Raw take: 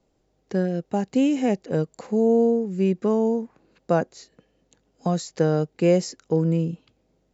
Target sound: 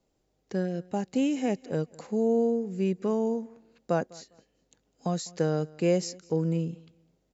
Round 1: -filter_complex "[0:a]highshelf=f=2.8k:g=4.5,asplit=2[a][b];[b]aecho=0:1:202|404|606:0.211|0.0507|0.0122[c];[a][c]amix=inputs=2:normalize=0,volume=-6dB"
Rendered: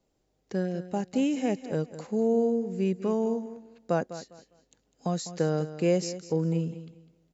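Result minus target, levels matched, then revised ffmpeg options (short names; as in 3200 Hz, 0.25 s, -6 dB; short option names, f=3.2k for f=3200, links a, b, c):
echo-to-direct +10 dB
-filter_complex "[0:a]highshelf=f=2.8k:g=4.5,asplit=2[a][b];[b]aecho=0:1:202|404:0.0668|0.016[c];[a][c]amix=inputs=2:normalize=0,volume=-6dB"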